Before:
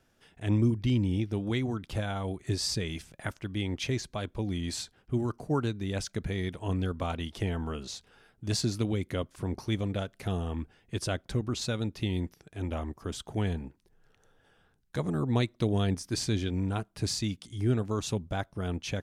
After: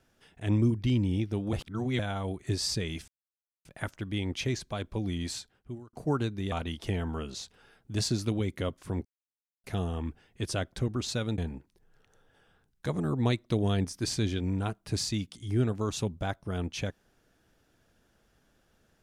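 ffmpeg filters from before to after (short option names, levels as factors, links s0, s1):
-filter_complex "[0:a]asplit=9[s0][s1][s2][s3][s4][s5][s6][s7][s8];[s0]atrim=end=1.532[s9];[s1]atrim=start=1.528:end=1.992,asetpts=PTS-STARTPTS,areverse[s10];[s2]atrim=start=1.988:end=3.08,asetpts=PTS-STARTPTS,afade=t=out:st=1.088:d=0.004:c=hsin,apad=pad_dur=0.57[s11];[s3]atrim=start=3.08:end=5.36,asetpts=PTS-STARTPTS,afade=t=in:d=0.004:c=hsin,afade=t=out:st=1.57:d=0.71[s12];[s4]atrim=start=5.36:end=5.952,asetpts=PTS-STARTPTS,afade=t=in:d=0.004:c=hsin[s13];[s5]atrim=start=7.048:end=9.58,asetpts=PTS-STARTPTS,afade=t=out:st=2.528:d=0.004:c=hsin[s14];[s6]atrim=start=9.58:end=10.17,asetpts=PTS-STARTPTS,volume=0[s15];[s7]atrim=start=10.17:end=11.912,asetpts=PTS-STARTPTS,afade=t=in:d=0.004:c=hsin[s16];[s8]atrim=start=13.478[s17];[s9][s10]acrossfade=d=0.004:c1=hsin:c2=hsin[s18];[s11][s12][s13]concat=n=3:v=0:a=1[s19];[s18][s19]acrossfade=d=0.004:c1=hsin:c2=hsin[s20];[s14][s15][s16]concat=n=3:v=0:a=1[s21];[s20][s21]acrossfade=d=0.004:c1=hsin:c2=hsin[s22];[s22][s17]acrossfade=d=0.004:c1=hsin:c2=hsin"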